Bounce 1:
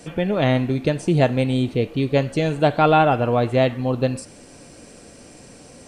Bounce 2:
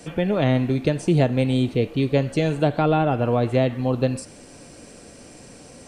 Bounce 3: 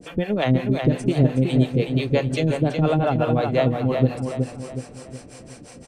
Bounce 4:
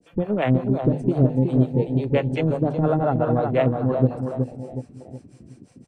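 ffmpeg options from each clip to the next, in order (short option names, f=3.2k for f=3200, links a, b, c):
-filter_complex "[0:a]acrossover=split=470[a][b];[b]acompressor=threshold=-23dB:ratio=4[c];[a][c]amix=inputs=2:normalize=0"
-filter_complex "[0:a]acrossover=split=440[a][b];[a]aeval=exprs='val(0)*(1-1/2+1/2*cos(2*PI*5.7*n/s))':c=same[c];[b]aeval=exprs='val(0)*(1-1/2-1/2*cos(2*PI*5.7*n/s))':c=same[d];[c][d]amix=inputs=2:normalize=0,asplit=2[e][f];[f]adelay=369,lowpass=f=4.4k:p=1,volume=-5dB,asplit=2[g][h];[h]adelay=369,lowpass=f=4.4k:p=1,volume=0.45,asplit=2[i][j];[j]adelay=369,lowpass=f=4.4k:p=1,volume=0.45,asplit=2[k][l];[l]adelay=369,lowpass=f=4.4k:p=1,volume=0.45,asplit=2[m][n];[n]adelay=369,lowpass=f=4.4k:p=1,volume=0.45,asplit=2[o][p];[p]adelay=369,lowpass=f=4.4k:p=1,volume=0.45[q];[g][i][k][m][o][q]amix=inputs=6:normalize=0[r];[e][r]amix=inputs=2:normalize=0,volume=4dB"
-af "bandreject=f=50:t=h:w=6,bandreject=f=100:t=h:w=6,bandreject=f=150:t=h:w=6,afwtdn=0.0282"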